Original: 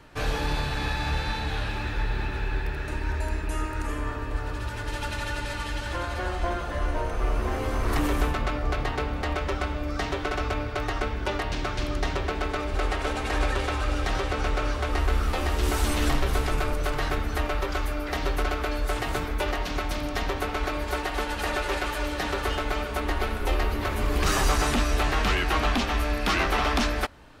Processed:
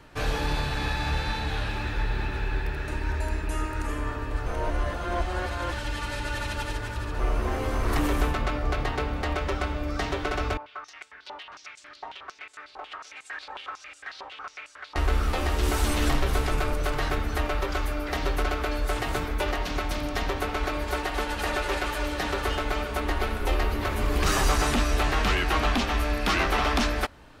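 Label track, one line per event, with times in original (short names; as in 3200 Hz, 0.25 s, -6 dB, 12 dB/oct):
4.460000	7.190000	reverse
10.570000	14.960000	stepped band-pass 11 Hz 900–7900 Hz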